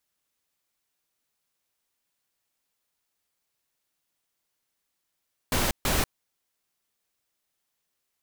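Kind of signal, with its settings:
noise bursts pink, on 0.19 s, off 0.14 s, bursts 2, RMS −24.5 dBFS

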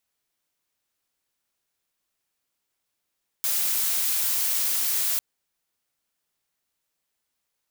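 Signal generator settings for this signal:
noise blue, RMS −24.5 dBFS 1.75 s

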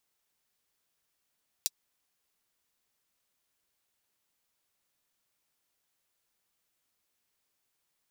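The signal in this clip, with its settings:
closed synth hi-hat, high-pass 4,500 Hz, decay 0.04 s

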